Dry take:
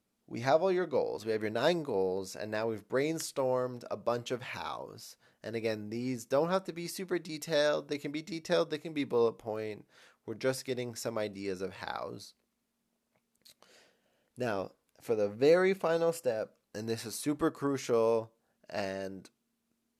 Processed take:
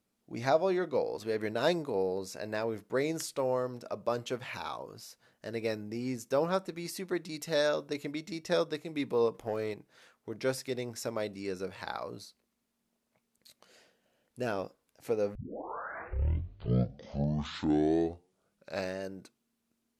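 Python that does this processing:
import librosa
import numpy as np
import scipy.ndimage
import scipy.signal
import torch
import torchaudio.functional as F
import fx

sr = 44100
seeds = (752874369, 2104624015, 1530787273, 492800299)

y = fx.leveller(x, sr, passes=1, at=(9.34, 9.74))
y = fx.edit(y, sr, fx.tape_start(start_s=15.35, length_s=3.66), tone=tone)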